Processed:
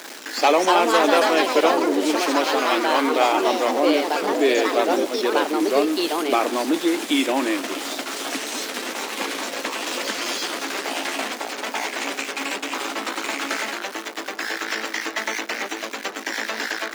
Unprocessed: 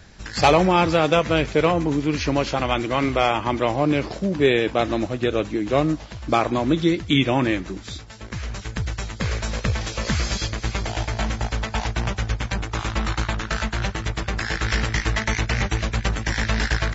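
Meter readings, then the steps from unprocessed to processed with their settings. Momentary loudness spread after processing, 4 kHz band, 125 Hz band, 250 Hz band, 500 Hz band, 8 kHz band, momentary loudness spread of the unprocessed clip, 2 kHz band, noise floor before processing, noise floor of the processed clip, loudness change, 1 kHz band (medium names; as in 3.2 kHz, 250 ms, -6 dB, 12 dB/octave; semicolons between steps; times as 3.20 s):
10 LU, +2.5 dB, under -25 dB, -0.5 dB, +1.5 dB, no reading, 9 LU, +1.5 dB, -37 dBFS, -36 dBFS, +0.5 dB, +2.5 dB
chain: jump at every zero crossing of -27 dBFS; ever faster or slower copies 332 ms, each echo +4 st, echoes 3; elliptic high-pass 270 Hz, stop band 60 dB; trim -1.5 dB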